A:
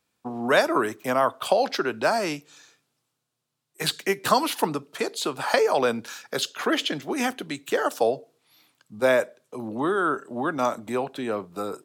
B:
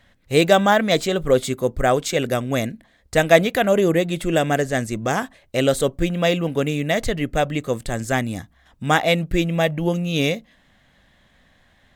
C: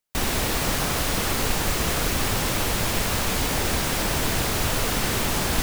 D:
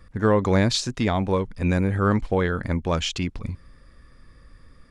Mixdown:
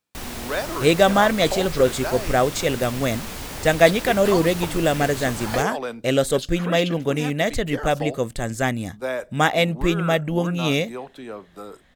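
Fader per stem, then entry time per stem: -7.0 dB, -1.0 dB, -9.0 dB, off; 0.00 s, 0.50 s, 0.00 s, off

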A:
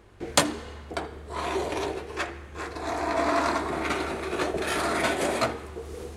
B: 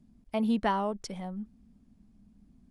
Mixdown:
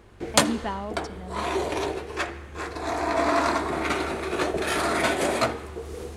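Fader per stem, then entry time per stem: +2.0, -3.5 dB; 0.00, 0.00 s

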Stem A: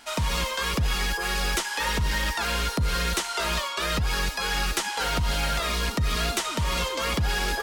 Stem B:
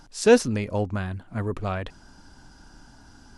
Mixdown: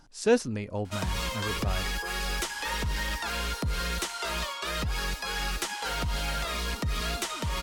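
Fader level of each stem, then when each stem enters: -5.0, -6.5 dB; 0.85, 0.00 s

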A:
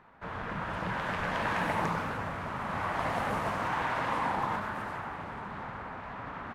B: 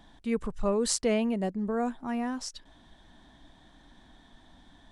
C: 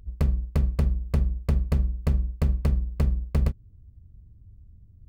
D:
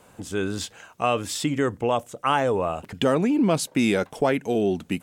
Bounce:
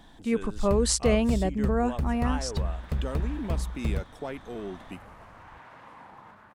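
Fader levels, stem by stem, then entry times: -18.0, +3.0, -6.0, -14.5 dB; 1.75, 0.00, 0.50, 0.00 s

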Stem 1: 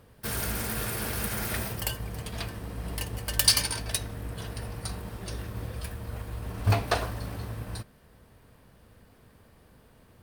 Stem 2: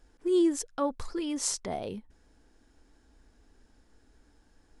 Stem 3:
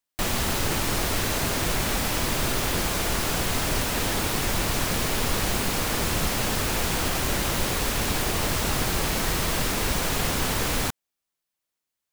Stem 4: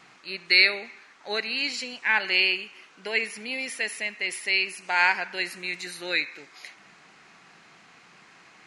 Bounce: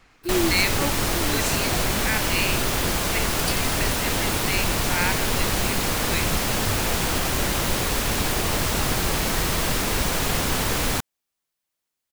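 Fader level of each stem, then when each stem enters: -11.0, -0.5, +2.0, -5.0 dB; 0.00, 0.00, 0.10, 0.00 s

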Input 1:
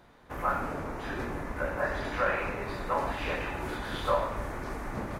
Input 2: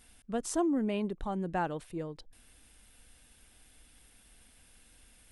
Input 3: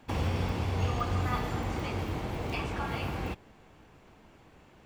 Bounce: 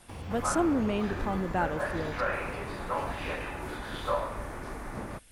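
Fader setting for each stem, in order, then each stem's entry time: -2.5, +2.5, -11.0 dB; 0.00, 0.00, 0.00 s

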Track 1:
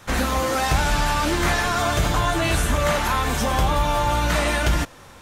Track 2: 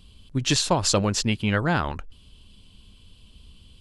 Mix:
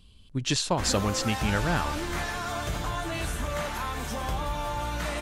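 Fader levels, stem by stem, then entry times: -10.5, -4.5 dB; 0.70, 0.00 s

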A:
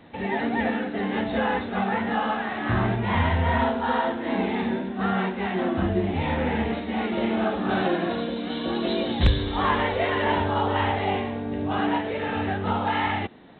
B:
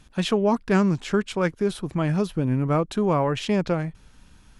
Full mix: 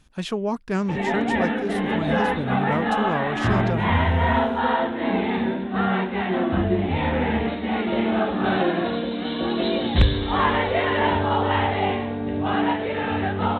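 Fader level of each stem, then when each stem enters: +2.5, -4.5 dB; 0.75, 0.00 s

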